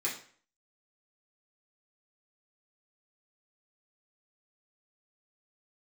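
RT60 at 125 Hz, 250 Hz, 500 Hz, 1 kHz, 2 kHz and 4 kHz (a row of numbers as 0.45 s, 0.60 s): 0.50 s, 0.45 s, 0.50 s, 0.50 s, 0.45 s, 0.40 s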